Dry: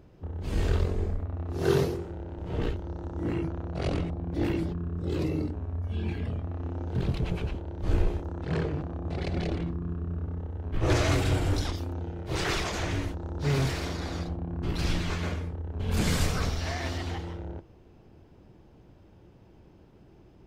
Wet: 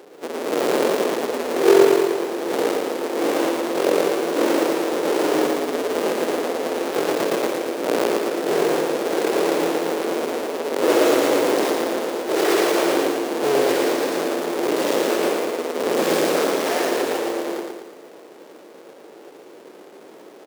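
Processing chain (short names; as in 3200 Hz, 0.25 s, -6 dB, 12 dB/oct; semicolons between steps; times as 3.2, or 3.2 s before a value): half-waves squared off; HPF 280 Hz 24 dB/oct; bell 470 Hz +10 dB 0.92 oct; in parallel at -3 dB: negative-ratio compressor -27 dBFS; on the sum: feedback echo 0.114 s, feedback 53%, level -4 dB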